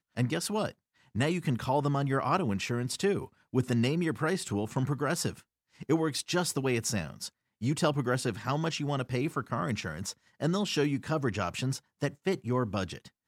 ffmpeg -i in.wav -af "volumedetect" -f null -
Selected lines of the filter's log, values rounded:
mean_volume: -31.0 dB
max_volume: -13.9 dB